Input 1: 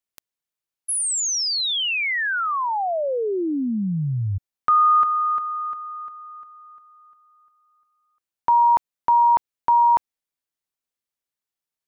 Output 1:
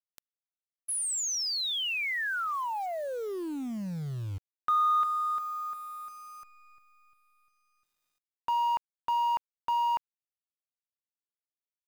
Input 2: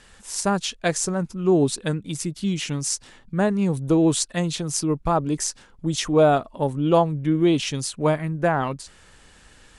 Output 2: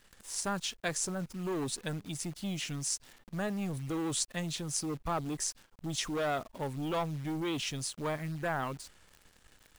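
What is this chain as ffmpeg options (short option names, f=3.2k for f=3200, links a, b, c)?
-filter_complex "[0:a]acrossover=split=1100[a][b];[a]asoftclip=type=tanh:threshold=-24dB[c];[c][b]amix=inputs=2:normalize=0,acrusher=bits=8:dc=4:mix=0:aa=0.000001,volume=-8dB"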